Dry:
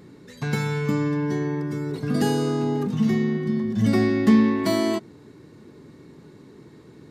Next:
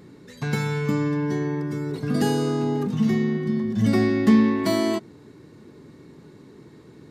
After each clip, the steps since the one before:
no processing that can be heard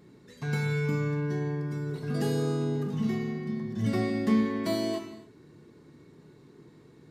reverb whose tail is shaped and stops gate 320 ms falling, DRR 3.5 dB
level −8.5 dB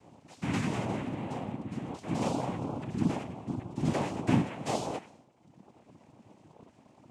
reverb reduction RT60 1.3 s
cochlear-implant simulation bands 4

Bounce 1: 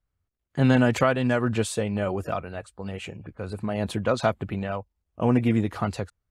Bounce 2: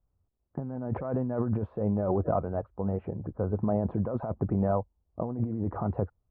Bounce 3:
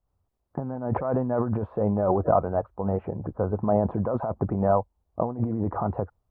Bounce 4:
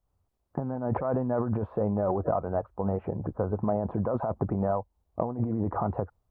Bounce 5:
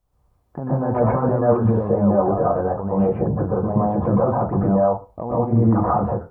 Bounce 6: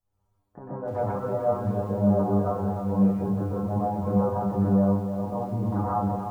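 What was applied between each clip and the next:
low-pass filter 1,000 Hz 24 dB per octave; compressor whose output falls as the input rises −29 dBFS, ratio −1
parametric band 920 Hz +7.5 dB 1.7 octaves; amplitude modulation by smooth noise, depth 60%; level +4 dB
downward compressor, threshold −23 dBFS, peak gain reduction 8 dB
brickwall limiter −21.5 dBFS, peak gain reduction 9 dB; convolution reverb RT60 0.30 s, pre-delay 112 ms, DRR −6 dB; level +5 dB
stiff-string resonator 98 Hz, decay 0.37 s, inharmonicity 0.002; feedback echo at a low word length 303 ms, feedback 55%, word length 9 bits, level −8.5 dB; level +2 dB

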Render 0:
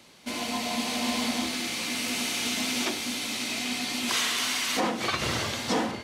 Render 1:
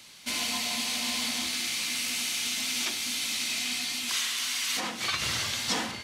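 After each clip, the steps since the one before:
guitar amp tone stack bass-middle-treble 5-5-5
speech leveller within 5 dB 0.5 s
level +8 dB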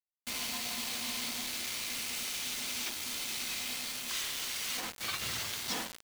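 bit reduction 5 bits
level −7.5 dB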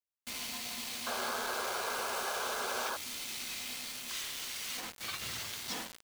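sound drawn into the spectrogram noise, 0:01.06–0:02.97, 360–1,700 Hz −34 dBFS
level −3.5 dB

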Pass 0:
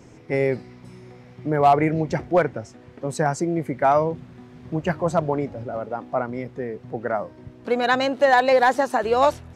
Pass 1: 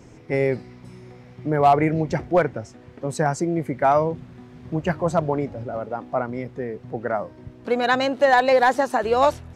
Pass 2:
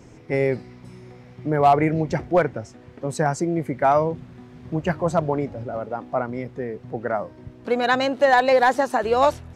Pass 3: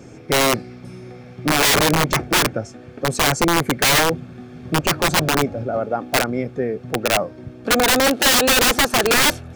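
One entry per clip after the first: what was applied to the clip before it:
low-shelf EQ 68 Hz +5.5 dB
no processing that can be heard
notch comb filter 980 Hz; wrap-around overflow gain 17 dB; level +7 dB

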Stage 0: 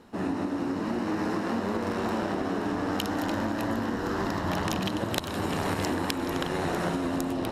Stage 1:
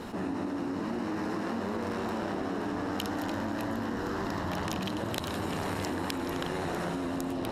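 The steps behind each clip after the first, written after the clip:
envelope flattener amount 70%
level −6 dB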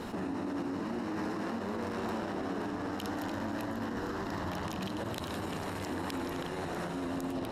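brickwall limiter −27.5 dBFS, peak gain reduction 8 dB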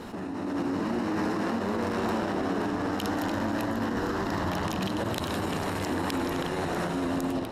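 automatic gain control gain up to 7 dB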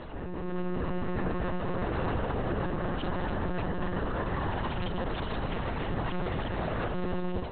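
one-pitch LPC vocoder at 8 kHz 180 Hz
level −1.5 dB

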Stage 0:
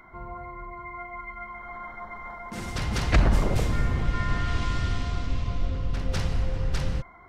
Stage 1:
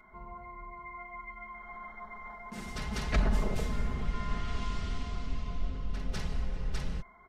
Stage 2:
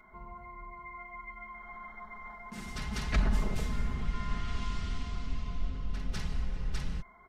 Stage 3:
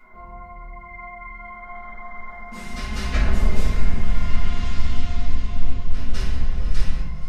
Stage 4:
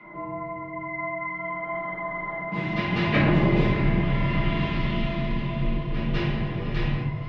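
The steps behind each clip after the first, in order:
comb filter 4.7 ms, depth 58%; level −8.5 dB
dynamic equaliser 530 Hz, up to −6 dB, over −53 dBFS, Q 1.2
on a send: feedback delay with all-pass diffusion 576 ms, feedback 46%, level −12.5 dB; on the sum: rectangular room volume 150 cubic metres, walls mixed, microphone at 2 metres
frequency shifter −35 Hz; loudspeaker in its box 110–3,200 Hz, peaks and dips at 140 Hz +7 dB, 310 Hz +10 dB, 1,400 Hz −8 dB; level +7.5 dB

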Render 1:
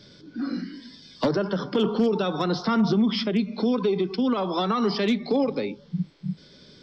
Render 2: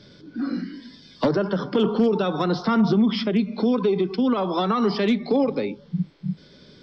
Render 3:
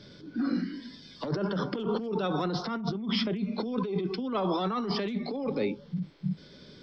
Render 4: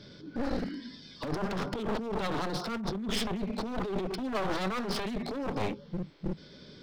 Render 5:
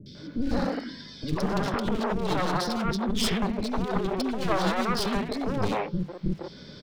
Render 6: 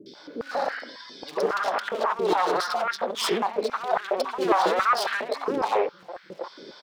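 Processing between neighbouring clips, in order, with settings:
low-pass filter 3,500 Hz 6 dB per octave; level +2.5 dB
compressor whose output falls as the input rises −25 dBFS, ratio −1; level −5 dB
wavefolder on the positive side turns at −32 dBFS
three-band delay without the direct sound lows, highs, mids 60/150 ms, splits 380/2,600 Hz; level +7 dB
high-pass on a step sequencer 7.3 Hz 360–1,600 Hz

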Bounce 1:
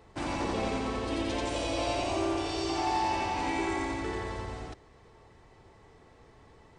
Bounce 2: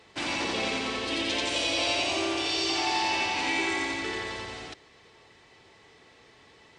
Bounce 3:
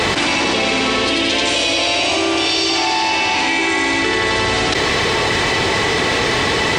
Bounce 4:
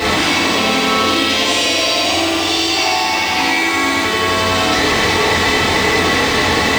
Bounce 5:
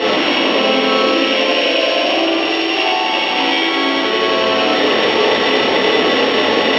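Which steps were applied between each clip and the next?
meter weighting curve D
envelope flattener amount 100%; level +9 dB
in parallel at −11 dB: bit reduction 4 bits; on the sum: convolution reverb, pre-delay 3 ms, DRR −7.5 dB; level −8 dB
samples sorted by size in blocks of 8 samples; loudspeaker in its box 240–4,200 Hz, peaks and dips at 250 Hz +5 dB, 380 Hz +5 dB, 550 Hz +10 dB, 2,900 Hz +9 dB; level −1 dB

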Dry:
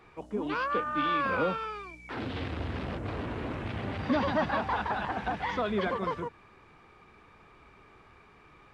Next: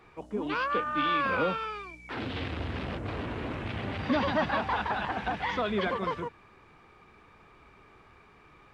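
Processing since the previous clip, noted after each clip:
dynamic equaliser 2,900 Hz, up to +4 dB, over −47 dBFS, Q 0.95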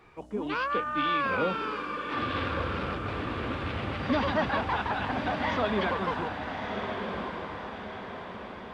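feedback delay with all-pass diffusion 1,214 ms, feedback 51%, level −5 dB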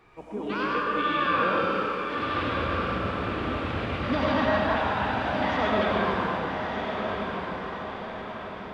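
comb and all-pass reverb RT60 2.1 s, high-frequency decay 0.7×, pre-delay 50 ms, DRR −3 dB
level −1.5 dB

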